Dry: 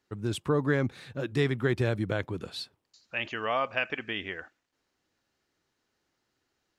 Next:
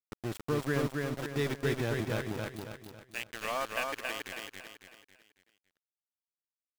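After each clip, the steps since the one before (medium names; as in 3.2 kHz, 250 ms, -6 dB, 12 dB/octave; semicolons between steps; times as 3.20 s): small samples zeroed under -29.5 dBFS; on a send: feedback delay 275 ms, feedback 42%, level -3 dB; on the sum: trim -5.5 dB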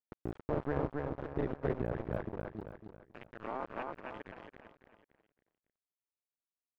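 cycle switcher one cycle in 2, muted; low-pass 1.1 kHz 12 dB/octave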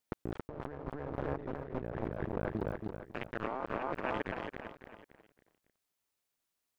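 compressor with a negative ratio -44 dBFS, ratio -1; trim +5.5 dB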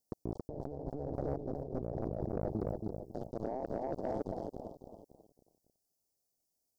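Chebyshev band-stop 740–5000 Hz, order 3; saturation -28 dBFS, distortion -16 dB; trim +3 dB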